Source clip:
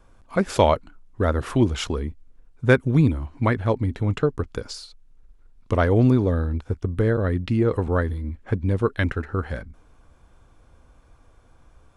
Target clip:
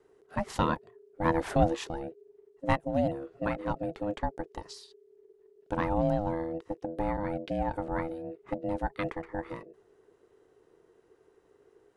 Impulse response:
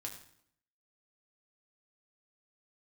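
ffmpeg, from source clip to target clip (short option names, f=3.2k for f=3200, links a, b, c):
-filter_complex "[0:a]aeval=exprs='val(0)*sin(2*PI*410*n/s)':c=same,asplit=3[a][b][c];[a]afade=t=out:st=1.24:d=0.02[d];[b]acontrast=52,afade=t=in:st=1.24:d=0.02,afade=t=out:st=1.74:d=0.02[e];[c]afade=t=in:st=1.74:d=0.02[f];[d][e][f]amix=inputs=3:normalize=0,volume=-7.5dB"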